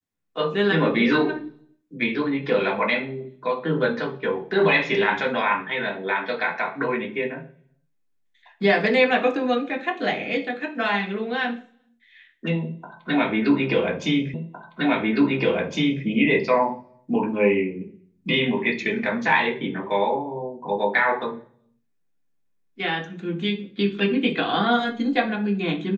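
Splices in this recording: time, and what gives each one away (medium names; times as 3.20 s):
14.34 s: repeat of the last 1.71 s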